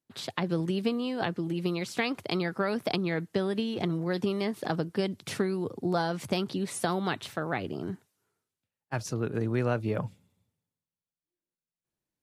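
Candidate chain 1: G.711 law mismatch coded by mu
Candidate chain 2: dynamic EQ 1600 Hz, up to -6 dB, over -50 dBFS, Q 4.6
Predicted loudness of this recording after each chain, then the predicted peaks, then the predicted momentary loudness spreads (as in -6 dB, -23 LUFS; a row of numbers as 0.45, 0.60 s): -30.0, -31.5 LUFS; -11.5, -13.0 dBFS; 5, 5 LU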